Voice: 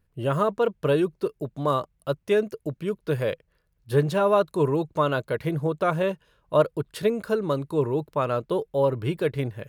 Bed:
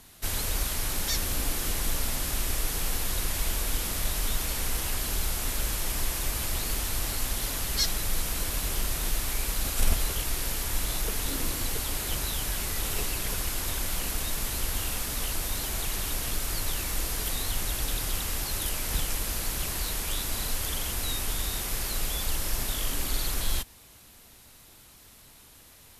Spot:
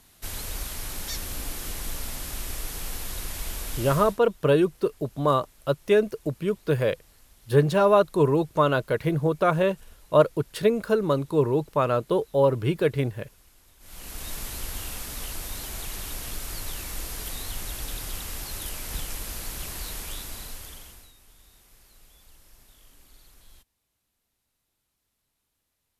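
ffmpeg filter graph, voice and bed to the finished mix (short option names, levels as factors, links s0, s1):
-filter_complex "[0:a]adelay=3600,volume=1.26[s0];[1:a]volume=8.41,afade=t=out:st=3.93:d=0.26:silence=0.0749894,afade=t=in:st=13.79:d=0.53:silence=0.0707946,afade=t=out:st=19.99:d=1.13:silence=0.0841395[s1];[s0][s1]amix=inputs=2:normalize=0"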